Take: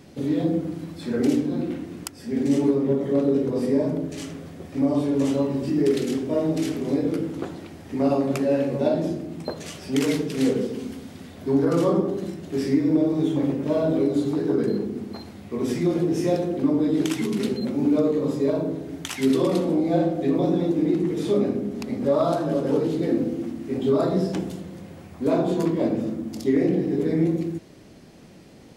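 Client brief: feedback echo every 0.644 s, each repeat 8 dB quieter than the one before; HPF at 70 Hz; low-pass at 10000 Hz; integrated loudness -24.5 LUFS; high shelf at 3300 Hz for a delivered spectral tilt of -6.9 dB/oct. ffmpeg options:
-af "highpass=70,lowpass=10k,highshelf=f=3.3k:g=3.5,aecho=1:1:644|1288|1932|2576|3220:0.398|0.159|0.0637|0.0255|0.0102,volume=-1dB"

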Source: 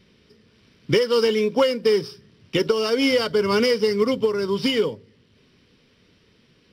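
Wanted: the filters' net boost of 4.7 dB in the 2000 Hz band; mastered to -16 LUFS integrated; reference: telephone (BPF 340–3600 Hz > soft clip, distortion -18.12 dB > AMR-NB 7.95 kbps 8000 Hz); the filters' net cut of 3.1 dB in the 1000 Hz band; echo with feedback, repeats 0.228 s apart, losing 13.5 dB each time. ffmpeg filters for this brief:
-af "highpass=340,lowpass=3.6k,equalizer=f=1k:t=o:g=-6.5,equalizer=f=2k:t=o:g=7.5,aecho=1:1:228|456:0.211|0.0444,asoftclip=threshold=-14.5dB,volume=8.5dB" -ar 8000 -c:a libopencore_amrnb -b:a 7950

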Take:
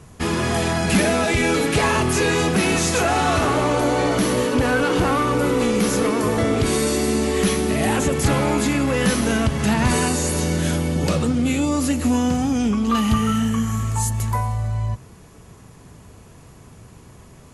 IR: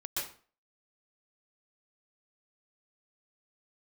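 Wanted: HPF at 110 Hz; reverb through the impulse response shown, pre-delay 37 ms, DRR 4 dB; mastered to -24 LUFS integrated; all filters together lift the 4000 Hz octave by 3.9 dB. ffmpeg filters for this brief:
-filter_complex "[0:a]highpass=110,equalizer=f=4k:t=o:g=5,asplit=2[a][b];[1:a]atrim=start_sample=2205,adelay=37[c];[b][c]afir=irnorm=-1:irlink=0,volume=-7dB[d];[a][d]amix=inputs=2:normalize=0,volume=-5.5dB"

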